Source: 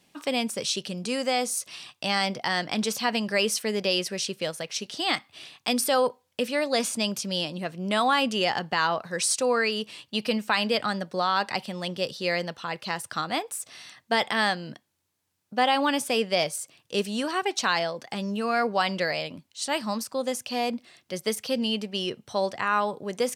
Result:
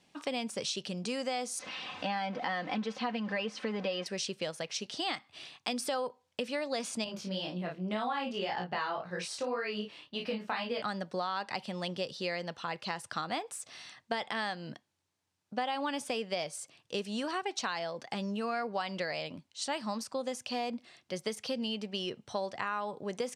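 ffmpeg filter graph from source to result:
-filter_complex "[0:a]asettb=1/sr,asplit=3[s0][s1][s2];[s0]atrim=end=1.594[s3];[s1]atrim=start=1.59:end=4.06,asetpts=PTS-STARTPTS,afade=t=in:d=0.004:c=qsin,afade=t=out:st=2.466:d=0.004:c=qsin,aeval=exprs='val(0)+0.5*0.0237*sgn(val(0))':c=same,highpass=120,lowpass=2700,aecho=1:1:3.9:0.58,atrim=end_sample=108927[s4];[s2]atrim=start=4.056[s5];[s3][s4]acrossfade=d=0.004:c1=hsin:c2=qsin[s6];[s6][s5]acrossfade=d=0.004:c1=qsin:c2=hsin,asettb=1/sr,asplit=3[s7][s8][s9];[s7]atrim=end=7.044[s10];[s8]atrim=start=7.04:end=10.82,asetpts=PTS-STARTPTS,afade=t=in:d=0.004:c=qsin,afade=t=out:st=3.776:d=0.004:c=qsin,equalizer=f=8200:t=o:w=1.4:g=-11.5,asplit=2[s11][s12];[s12]adelay=33,volume=0.631[s13];[s11][s13]amix=inputs=2:normalize=0,atrim=end_sample=166698,flanger=delay=16.5:depth=4.6:speed=1.9[s14];[s9]atrim=start=10.816[s15];[s10][s14]acrossfade=d=0.004:c1=hsin:c2=qsin[s16];[s16][s15]acrossfade=d=0.004:c1=qsin:c2=hsin,lowpass=7900,acompressor=threshold=0.0398:ratio=6,equalizer=f=810:t=o:w=0.77:g=2,volume=0.668"

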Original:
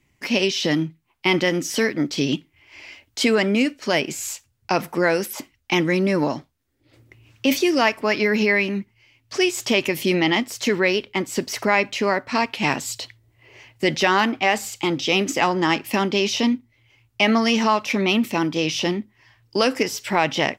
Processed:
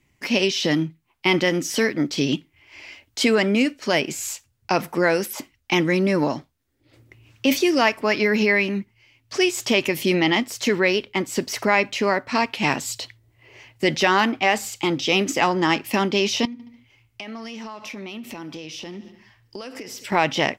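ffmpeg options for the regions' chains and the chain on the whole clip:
-filter_complex "[0:a]asettb=1/sr,asplit=3[s0][s1][s2];[s0]atrim=end=16.454[s3];[s1]atrim=start=16.45:end=20.12,asetpts=PTS-STARTPTS,afade=t=in:d=0.004:c=qsin,afade=t=out:st=3.666:d=0.004:c=qsin,aecho=1:1:72|144|216|288:0.1|0.054|0.0292|0.0157,atrim=end_sample=161847,acompressor=threshold=0.0282:ratio=16:attack=3.2:release=140:knee=1:detection=peak[s4];[s2]atrim=start=20.116[s5];[s3][s4]acrossfade=d=0.004:c1=hsin:c2=qsin[s6];[s6][s5]acrossfade=d=0.004:c1=qsin:c2=hsin"

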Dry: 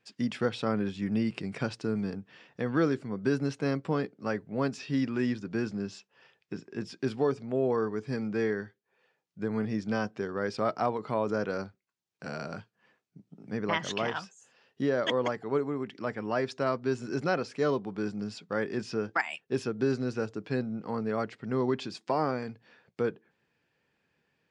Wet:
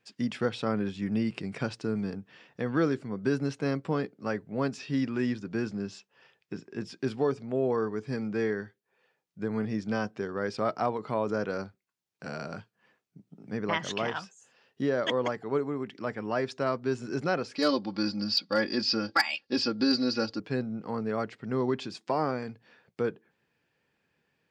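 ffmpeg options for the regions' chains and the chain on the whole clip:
-filter_complex "[0:a]asettb=1/sr,asplit=3[s0][s1][s2];[s0]atrim=end=17.554[s3];[s1]atrim=start=17.55:end=20.4,asetpts=PTS-STARTPTS,afade=t=in:d=0.004:c=qsin,afade=t=out:st=2.846:d=0.004:c=qsin,lowpass=f=4700:t=q:w=11,aecho=1:1:3.6:0.96,atrim=end_sample=125685,asoftclip=type=hard:threshold=0.168[s4];[s2]atrim=start=20.396[s5];[s3][s4]acrossfade=d=0.004:c1=hsin:c2=qsin[s6];[s6][s5]acrossfade=d=0.004:c1=qsin:c2=hsin"

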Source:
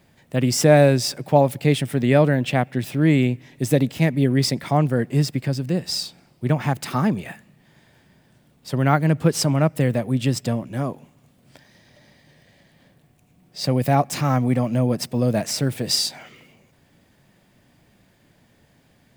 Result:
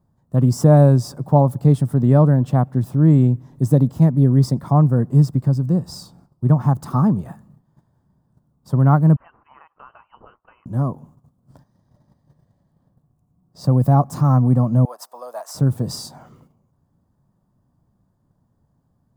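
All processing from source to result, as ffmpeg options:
-filter_complex "[0:a]asettb=1/sr,asplit=3[s0][s1][s2];[s0]atrim=end=9.164[s3];[s1]atrim=start=9.16:end=10.66,asetpts=PTS-STARTPTS,afade=t=in:d=0.004:c=qsin,afade=t=out:st=1.496:d=0.004:c=qsin,highpass=1000,acompressor=threshold=0.02:ratio=5:attack=3.2:release=140:knee=1:detection=peak,lowpass=f=2700:t=q:w=0.5098,lowpass=f=2700:t=q:w=0.6013,lowpass=f=2700:t=q:w=0.9,lowpass=f=2700:t=q:w=2.563,afreqshift=-3200[s4];[s2]atrim=start=10.656[s5];[s3][s4]acrossfade=d=0.004:c1=hsin:c2=qsin[s6];[s6][s5]acrossfade=d=0.004:c1=qsin:c2=hsin,asettb=1/sr,asplit=3[s7][s8][s9];[s7]atrim=end=14.854[s10];[s8]atrim=start=14.85:end=15.55,asetpts=PTS-STARTPTS,afade=t=in:d=0.004:c=qsin,afade=t=out:st=0.696:d=0.004:c=qsin,highpass=f=680:w=0.5412,highpass=f=680:w=1.3066,equalizer=f=13000:t=o:w=0.22:g=4[s11];[s9]atrim=start=15.546[s12];[s10][s11]acrossfade=d=0.004:c1=hsin:c2=qsin[s13];[s13][s12]acrossfade=d=0.004:c1=qsin:c2=hsin,bass=f=250:g=13,treble=f=4000:g=10,agate=range=0.282:threshold=0.00708:ratio=16:detection=peak,highshelf=f=1600:t=q:w=3:g=-13,volume=0.596"

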